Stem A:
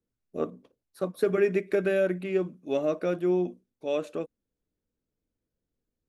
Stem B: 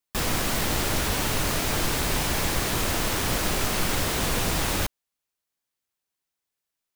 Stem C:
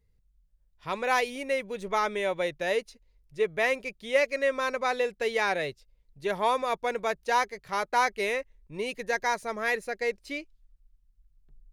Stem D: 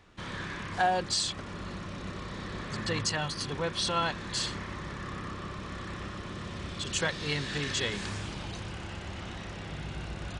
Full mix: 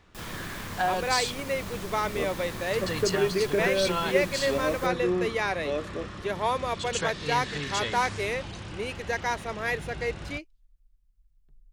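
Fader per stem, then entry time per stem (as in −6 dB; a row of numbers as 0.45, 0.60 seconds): −2.0, −16.0, −1.5, −0.5 decibels; 1.80, 0.00, 0.00, 0.00 seconds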